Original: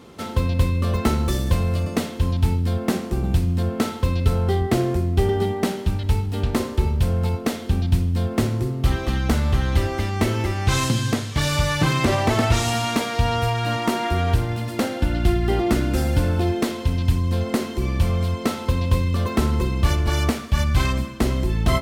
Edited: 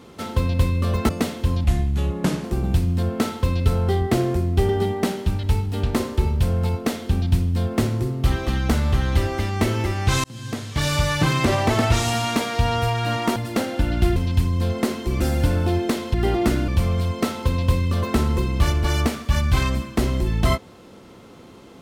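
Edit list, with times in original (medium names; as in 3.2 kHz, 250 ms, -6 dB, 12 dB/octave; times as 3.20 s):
1.09–1.85 s: delete
2.40–3.04 s: speed 80%
10.84–11.47 s: fade in
13.96–14.59 s: delete
15.39–15.93 s: swap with 16.87–17.91 s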